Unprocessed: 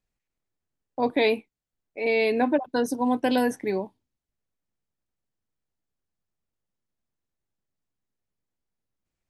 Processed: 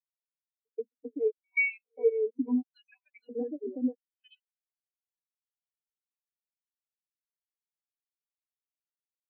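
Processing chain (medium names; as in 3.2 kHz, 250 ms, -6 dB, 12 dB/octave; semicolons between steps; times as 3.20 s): slices played last to first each 262 ms, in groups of 3; on a send: delay 469 ms -5 dB; on the sum: LFO high-pass square 0.76 Hz 260–2500 Hz; in parallel at -1 dB: peak limiter -15.5 dBFS, peak gain reduction 8.5 dB; on the sum: peaking EQ 91 Hz -14.5 dB 2.5 oct; compression 10:1, threshold -26 dBFS, peak gain reduction 13.5 dB; pre-echo 132 ms -14.5 dB; spectral contrast expander 4:1; trim -1.5 dB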